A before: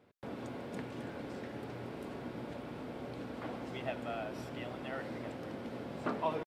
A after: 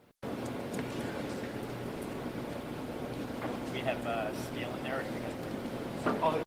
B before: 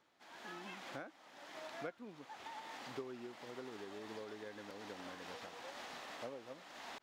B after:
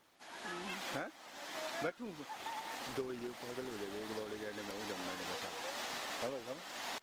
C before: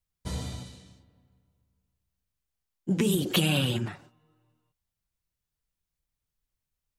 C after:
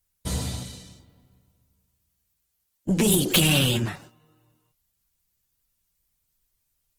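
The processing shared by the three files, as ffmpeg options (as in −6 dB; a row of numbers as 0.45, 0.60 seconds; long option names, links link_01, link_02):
-af "aeval=exprs='0.299*(cos(1*acos(clip(val(0)/0.299,-1,1)))-cos(1*PI/2))+0.106*(cos(2*acos(clip(val(0)/0.299,-1,1)))-cos(2*PI/2))+0.0841*(cos(5*acos(clip(val(0)/0.299,-1,1)))-cos(5*PI/2))':channel_layout=same,aemphasis=mode=production:type=cd,volume=-1.5dB" -ar 48000 -c:a libopus -b:a 20k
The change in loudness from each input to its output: +5.0, +6.5, +6.0 LU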